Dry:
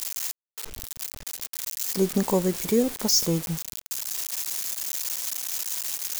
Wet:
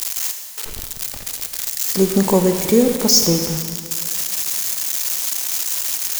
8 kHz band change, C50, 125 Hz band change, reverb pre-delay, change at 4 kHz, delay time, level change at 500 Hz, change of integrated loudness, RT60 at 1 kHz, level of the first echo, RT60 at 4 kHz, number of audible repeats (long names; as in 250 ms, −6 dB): +8.5 dB, 6.5 dB, +7.5 dB, 27 ms, +8.5 dB, no echo audible, +8.5 dB, +8.0 dB, 2.0 s, no echo audible, 1.8 s, no echo audible